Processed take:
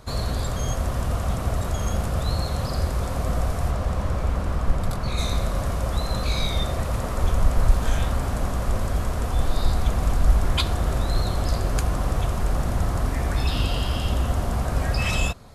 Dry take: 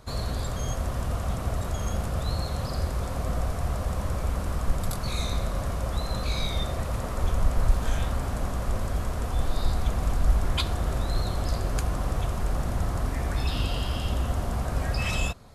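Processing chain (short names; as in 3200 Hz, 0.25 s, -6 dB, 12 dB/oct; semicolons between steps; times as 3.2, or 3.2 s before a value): 3.7–5.17 high shelf 8700 Hz -> 4500 Hz -11 dB; gain +4 dB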